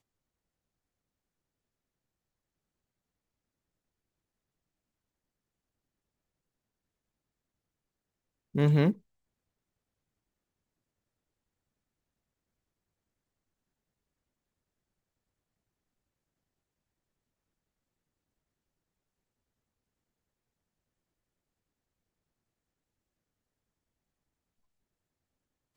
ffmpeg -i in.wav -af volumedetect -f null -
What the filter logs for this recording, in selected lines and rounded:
mean_volume: -41.6 dB
max_volume: -13.5 dB